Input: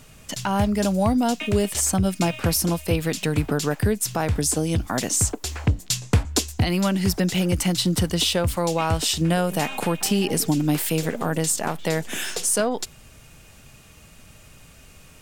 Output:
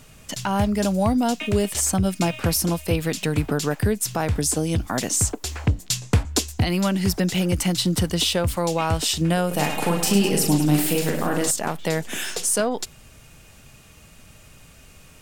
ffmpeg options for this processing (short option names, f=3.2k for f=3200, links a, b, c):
-filter_complex "[0:a]asettb=1/sr,asplit=3[a][b][c];[a]atrim=end=9.474[d];[b]atrim=start=9.47:end=11.51,asetpts=PTS-STARTPTS,afade=t=in:d=0.004:c=qsin,afade=t=out:st=2.036:d=0.004:c=qsin,aecho=1:1:40|104|206.4|370.2|632.4:0.631|0.398|0.251|0.158|0.1,atrim=end_sample=89964[e];[c]atrim=start=11.506[f];[d][e]acrossfade=d=0.004:c1=hsin:c2=qsin[g];[g][f]acrossfade=d=0.004:c1=qsin:c2=hsin"